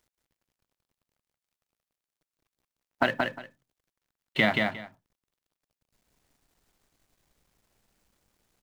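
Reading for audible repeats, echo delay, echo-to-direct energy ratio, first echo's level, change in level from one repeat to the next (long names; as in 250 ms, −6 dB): 2, 178 ms, −3.5 dB, −3.5 dB, −15.0 dB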